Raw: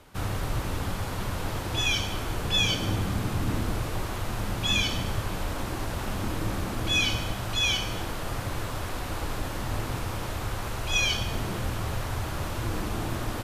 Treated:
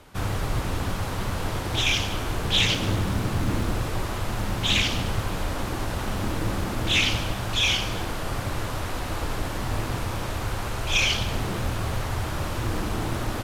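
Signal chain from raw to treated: Doppler distortion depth 0.55 ms; gain +3 dB

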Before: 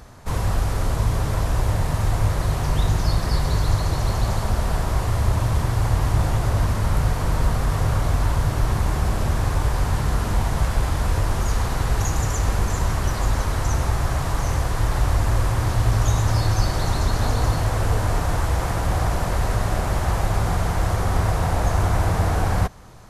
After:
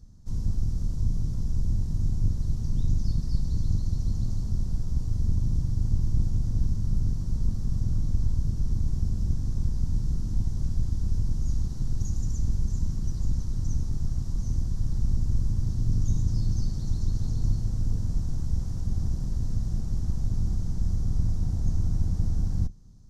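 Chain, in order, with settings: octaver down 2 oct, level +4 dB; EQ curve 200 Hz 0 dB, 600 Hz -21 dB, 2400 Hz -25 dB, 5700 Hz -3 dB, 9800 Hz -15 dB; gain -8.5 dB

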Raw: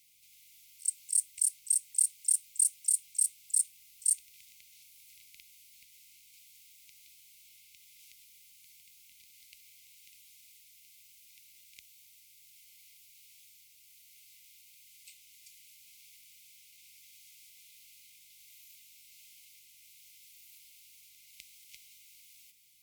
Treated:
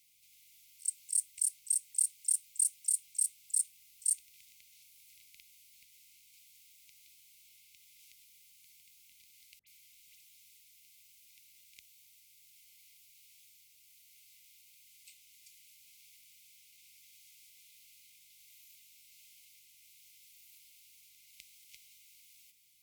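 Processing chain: 9.59–10.54 dispersion highs, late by 78 ms, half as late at 1700 Hz; gain -3 dB

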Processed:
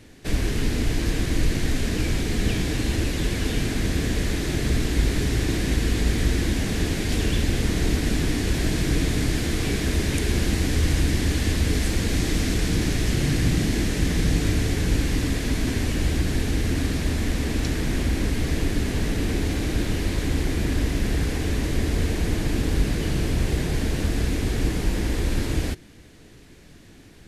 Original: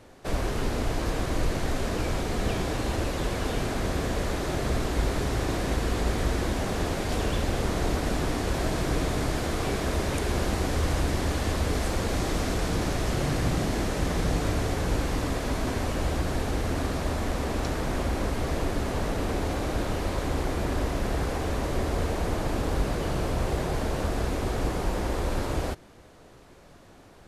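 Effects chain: band shelf 830 Hz -11.5 dB; notch 380 Hz, Q 12; gain +5.5 dB

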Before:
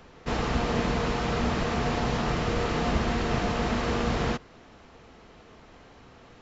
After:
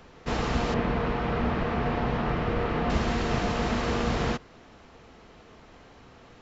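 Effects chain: 0.74–2.9 LPF 2500 Hz 12 dB/oct

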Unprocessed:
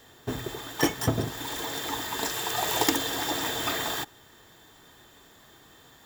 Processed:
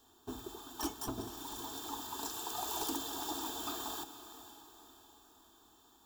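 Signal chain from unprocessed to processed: wavefolder -19 dBFS; fixed phaser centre 540 Hz, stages 6; diffused feedback echo 0.485 s, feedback 46%, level -12.5 dB; gain -8.5 dB

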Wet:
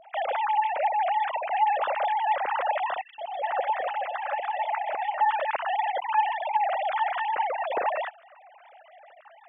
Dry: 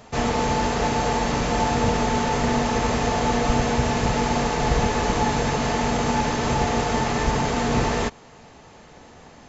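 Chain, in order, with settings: sine-wave speech; 3.01–5.21 three bands offset in time highs, lows, mids 0.17/0.42 s, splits 680/3000 Hz; gain -4.5 dB

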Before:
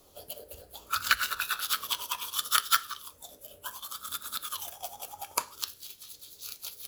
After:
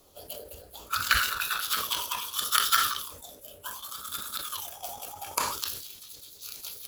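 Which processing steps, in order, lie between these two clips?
sustainer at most 64 dB/s

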